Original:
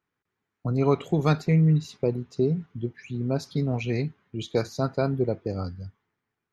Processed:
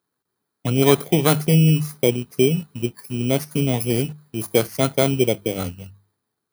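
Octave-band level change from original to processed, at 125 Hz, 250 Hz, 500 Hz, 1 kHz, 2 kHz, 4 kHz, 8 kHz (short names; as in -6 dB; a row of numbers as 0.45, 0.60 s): +4.0 dB, +5.5 dB, +7.0 dB, +5.5 dB, +9.5 dB, +13.5 dB, n/a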